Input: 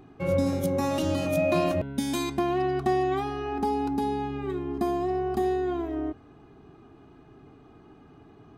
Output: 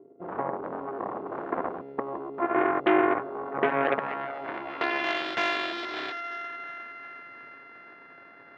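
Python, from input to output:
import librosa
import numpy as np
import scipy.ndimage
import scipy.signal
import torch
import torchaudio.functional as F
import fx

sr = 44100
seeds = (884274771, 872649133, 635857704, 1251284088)

y = np.r_[np.sort(x[:len(x) // 64 * 64].reshape(-1, 64), axis=1).ravel(), x[len(x) // 64 * 64:]]
y = y + 10.0 ** (-23.0 / 20.0) * np.pad(y, (int(565 * sr / 1000.0), 0))[:len(y)]
y = fx.rider(y, sr, range_db=10, speed_s=2.0)
y = fx.peak_eq(y, sr, hz=700.0, db=8.0, octaves=1.4, at=(2.42, 3.94))
y = fx.echo_wet_highpass(y, sr, ms=357, feedback_pct=61, hz=1800.0, wet_db=-5)
y = fx.filter_sweep_lowpass(y, sr, from_hz=400.0, to_hz=1700.0, start_s=3.6, end_s=5.3, q=3.8)
y = fx.cheby_harmonics(y, sr, harmonics=(5, 7, 8), levels_db=(-15, -7, -18), full_scale_db=-7.0)
y = fx.bandpass_edges(y, sr, low_hz=290.0, high_hz=3300.0)
y = y * 10.0 ** (-6.0 / 20.0)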